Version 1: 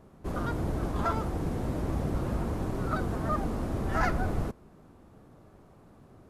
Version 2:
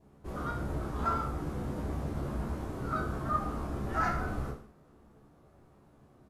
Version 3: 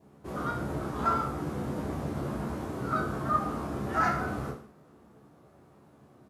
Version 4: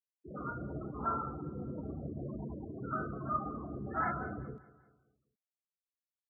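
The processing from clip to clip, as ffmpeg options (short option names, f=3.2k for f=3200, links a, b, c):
-filter_complex "[0:a]adynamicequalizer=threshold=0.00501:dfrequency=1300:dqfactor=3.1:tfrequency=1300:tqfactor=3.1:attack=5:release=100:ratio=0.375:range=3.5:mode=boostabove:tftype=bell,asplit=2[a][b];[b]adelay=14,volume=-5.5dB[c];[a][c]amix=inputs=2:normalize=0,aecho=1:1:30|64.5|104.2|149.8|202.3:0.631|0.398|0.251|0.158|0.1,volume=-8dB"
-af "highpass=110,volume=4dB"
-af "afftfilt=real='re*gte(hypot(re,im),0.0447)':imag='im*gte(hypot(re,im),0.0447)':win_size=1024:overlap=0.75,areverse,acompressor=mode=upward:threshold=-36dB:ratio=2.5,areverse,aecho=1:1:194|388|582|776:0.112|0.0527|0.0248|0.0116,volume=-7dB"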